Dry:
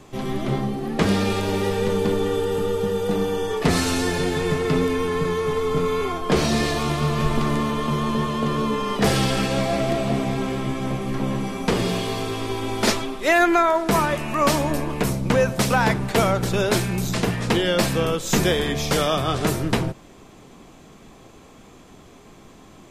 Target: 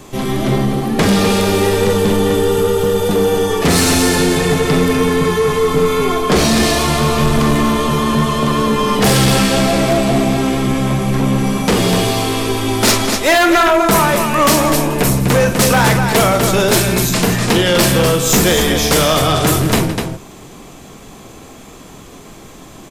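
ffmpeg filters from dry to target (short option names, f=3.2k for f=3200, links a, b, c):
-af "aecho=1:1:45|165|249:0.376|0.168|0.422,aeval=exprs='0.668*sin(PI/2*2.51*val(0)/0.668)':c=same,highshelf=f=7.3k:g=9.5,volume=-3.5dB"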